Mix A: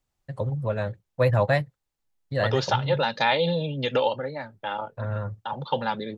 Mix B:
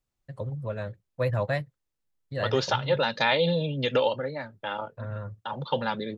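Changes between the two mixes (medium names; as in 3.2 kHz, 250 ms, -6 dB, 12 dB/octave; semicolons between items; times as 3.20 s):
first voice -5.5 dB; master: add peaking EQ 820 Hz -5 dB 0.3 oct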